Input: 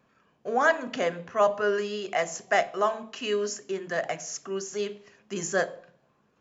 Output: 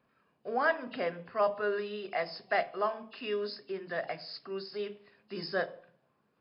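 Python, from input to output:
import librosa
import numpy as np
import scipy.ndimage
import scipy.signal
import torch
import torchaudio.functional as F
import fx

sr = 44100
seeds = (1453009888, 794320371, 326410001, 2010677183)

y = fx.freq_compress(x, sr, knee_hz=2600.0, ratio=1.5)
y = fx.hum_notches(y, sr, base_hz=50, count=4)
y = y * 10.0 ** (-6.0 / 20.0)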